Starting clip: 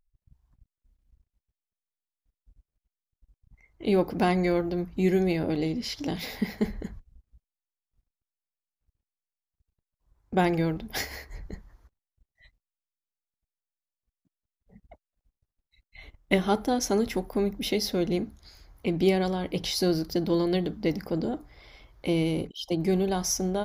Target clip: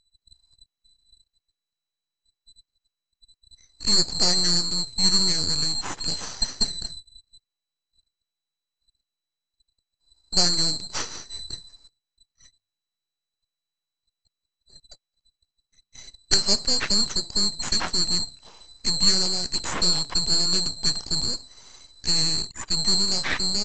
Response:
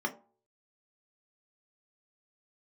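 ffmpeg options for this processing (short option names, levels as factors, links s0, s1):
-af "afftfilt=real='real(if(lt(b,736),b+184*(1-2*mod(floor(b/184),2)),b),0)':imag='imag(if(lt(b,736),b+184*(1-2*mod(floor(b/184),2)),b),0)':win_size=2048:overlap=0.75,bandreject=f=100.7:t=h:w=4,bandreject=f=201.4:t=h:w=4,bandreject=f=302.1:t=h:w=4,bandreject=f=402.8:t=h:w=4,bandreject=f=503.5:t=h:w=4,aresample=16000,aeval=exprs='max(val(0),0)':c=same,aresample=44100,volume=2.24"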